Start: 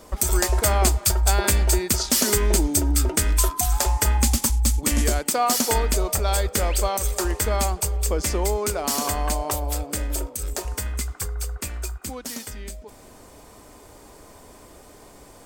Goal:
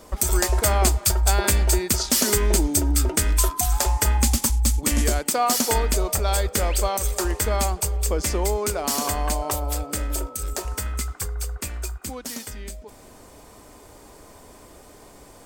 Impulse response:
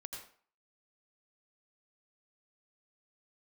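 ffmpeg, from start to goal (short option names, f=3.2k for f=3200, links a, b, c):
-filter_complex "[0:a]asettb=1/sr,asplit=3[a][b][c];[a]atrim=end=9.424[d];[b]atrim=start=9.42:end=11.13,asetpts=PTS-STARTPTS,afade=t=in:d=0.004:c=qsin,afade=t=out:st=1.706:d=0.004:c=qsin,aeval=exprs='val(0)+0.00794*sin(2*PI*1300*n/s)':c=same[e];[c]atrim=start=11.126[f];[d][e]acrossfade=d=0.004:c1=hsin:c2=qsin[g];[g][f]acrossfade=d=0.004:c1=qsin:c2=hsin"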